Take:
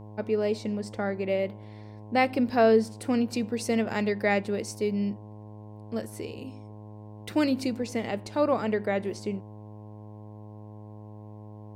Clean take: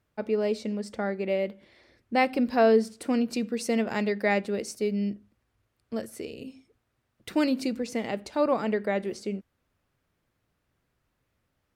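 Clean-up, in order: de-hum 105.7 Hz, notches 10

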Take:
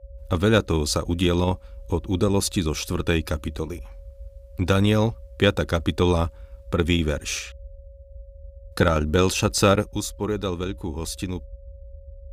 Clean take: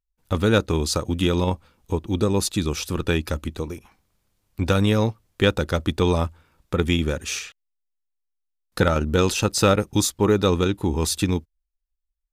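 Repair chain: notch 550 Hz, Q 30; noise print and reduce 30 dB; gain 0 dB, from 9.87 s +7.5 dB

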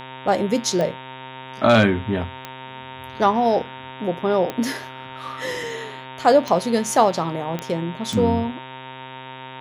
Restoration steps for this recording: de-click; de-hum 130.4 Hz, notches 29; notch 920 Hz, Q 30

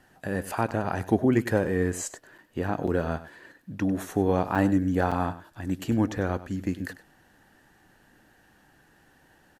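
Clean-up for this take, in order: interpolate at 0.71/2.38/2.87/4.55/5.11, 5.7 ms; inverse comb 98 ms -15.5 dB

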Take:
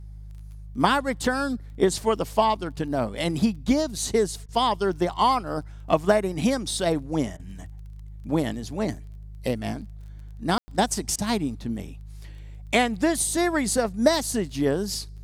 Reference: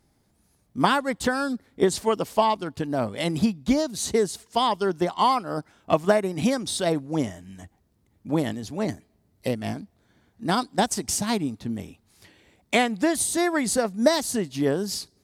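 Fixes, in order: de-click; de-hum 51.6 Hz, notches 3; room tone fill 10.58–10.68; interpolate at 4.46/7.37/11.16, 24 ms

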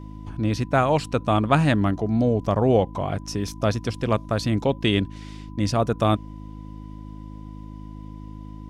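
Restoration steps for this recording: de-hum 52.2 Hz, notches 6; notch 1000 Hz, Q 30

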